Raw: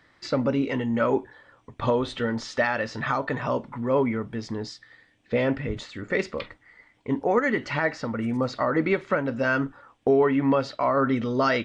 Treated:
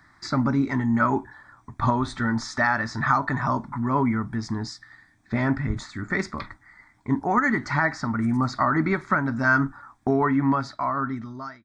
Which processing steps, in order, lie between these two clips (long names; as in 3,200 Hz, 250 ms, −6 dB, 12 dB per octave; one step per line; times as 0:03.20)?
fade-out on the ending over 1.48 s
phaser with its sweep stopped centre 1,200 Hz, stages 4
level +6.5 dB